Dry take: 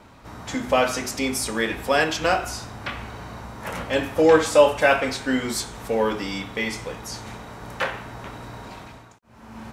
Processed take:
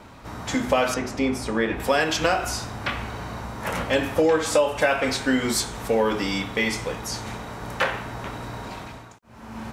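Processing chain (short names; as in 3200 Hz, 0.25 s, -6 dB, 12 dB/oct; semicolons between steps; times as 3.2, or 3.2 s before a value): 0.94–1.8 LPF 1400 Hz 6 dB/oct; compressor 6:1, threshold -20 dBFS, peak gain reduction 11 dB; gain +3.5 dB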